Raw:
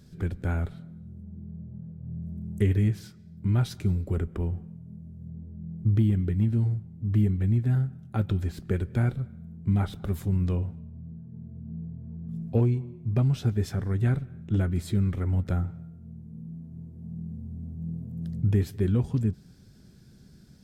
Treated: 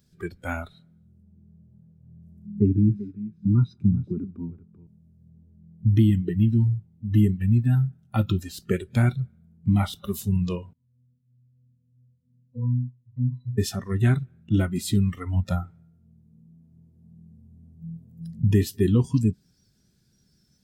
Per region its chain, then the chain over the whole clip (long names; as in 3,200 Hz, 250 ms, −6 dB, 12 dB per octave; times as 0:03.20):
0:02.46–0:04.87: resonant band-pass 230 Hz, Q 0.77 + comb filter 0.8 ms, depth 50% + single-tap delay 387 ms −9 dB
0:10.73–0:13.58: high-shelf EQ 3,000 Hz −11 dB + resonances in every octave B, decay 0.41 s
whole clip: high-shelf EQ 2,000 Hz +8 dB; noise reduction from a noise print of the clip's start 17 dB; dynamic equaliser 300 Hz, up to +4 dB, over −45 dBFS, Q 2.1; level +4 dB